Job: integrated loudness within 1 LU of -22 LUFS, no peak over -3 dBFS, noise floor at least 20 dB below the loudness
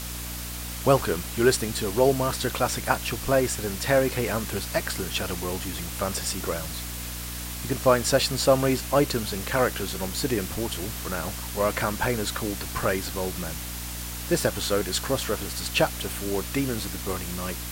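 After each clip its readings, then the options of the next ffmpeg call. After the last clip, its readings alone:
hum 60 Hz; harmonics up to 300 Hz; hum level -35 dBFS; noise floor -34 dBFS; noise floor target -46 dBFS; loudness -26.0 LUFS; peak -5.0 dBFS; loudness target -22.0 LUFS
-> -af "bandreject=f=60:t=h:w=6,bandreject=f=120:t=h:w=6,bandreject=f=180:t=h:w=6,bandreject=f=240:t=h:w=6,bandreject=f=300:t=h:w=6"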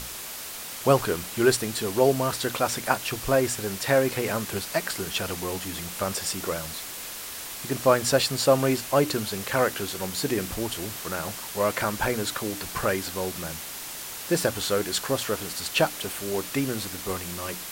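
hum none; noise floor -37 dBFS; noise floor target -47 dBFS
-> -af "afftdn=nr=10:nf=-37"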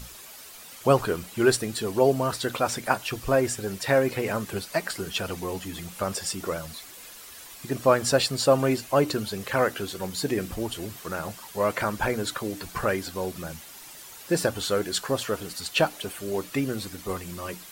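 noise floor -45 dBFS; noise floor target -47 dBFS
-> -af "afftdn=nr=6:nf=-45"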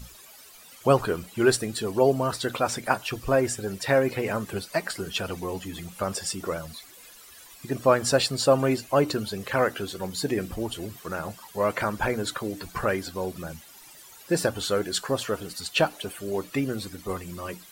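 noise floor -49 dBFS; loudness -27.0 LUFS; peak -5.0 dBFS; loudness target -22.0 LUFS
-> -af "volume=5dB,alimiter=limit=-3dB:level=0:latency=1"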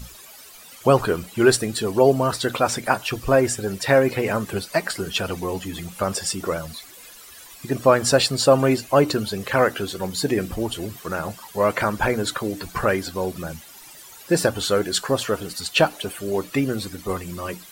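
loudness -22.0 LUFS; peak -3.0 dBFS; noise floor -44 dBFS

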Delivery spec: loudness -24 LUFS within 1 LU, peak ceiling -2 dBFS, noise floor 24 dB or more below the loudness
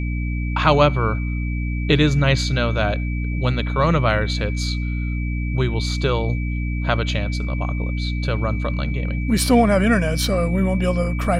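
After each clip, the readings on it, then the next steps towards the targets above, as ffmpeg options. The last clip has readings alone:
hum 60 Hz; harmonics up to 300 Hz; hum level -21 dBFS; steady tone 2300 Hz; tone level -34 dBFS; loudness -20.5 LUFS; peak -2.5 dBFS; loudness target -24.0 LUFS
-> -af "bandreject=f=60:t=h:w=4,bandreject=f=120:t=h:w=4,bandreject=f=180:t=h:w=4,bandreject=f=240:t=h:w=4,bandreject=f=300:t=h:w=4"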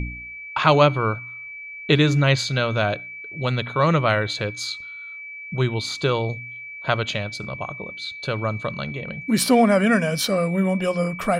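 hum none; steady tone 2300 Hz; tone level -34 dBFS
-> -af "bandreject=f=2.3k:w=30"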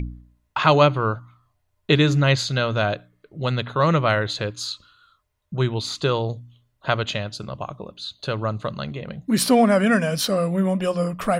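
steady tone none; loudness -22.0 LUFS; peak -3.0 dBFS; loudness target -24.0 LUFS
-> -af "volume=-2dB"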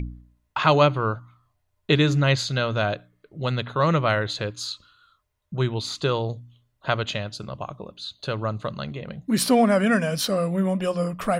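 loudness -24.0 LUFS; peak -5.0 dBFS; noise floor -73 dBFS

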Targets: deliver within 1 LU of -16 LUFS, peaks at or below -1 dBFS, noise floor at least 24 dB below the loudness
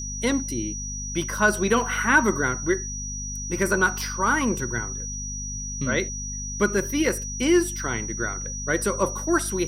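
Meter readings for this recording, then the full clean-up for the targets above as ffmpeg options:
hum 50 Hz; harmonics up to 250 Hz; hum level -32 dBFS; steady tone 5800 Hz; tone level -32 dBFS; loudness -24.5 LUFS; peak -7.0 dBFS; loudness target -16.0 LUFS
-> -af "bandreject=f=50:t=h:w=4,bandreject=f=100:t=h:w=4,bandreject=f=150:t=h:w=4,bandreject=f=200:t=h:w=4,bandreject=f=250:t=h:w=4"
-af "bandreject=f=5.8k:w=30"
-af "volume=8.5dB,alimiter=limit=-1dB:level=0:latency=1"

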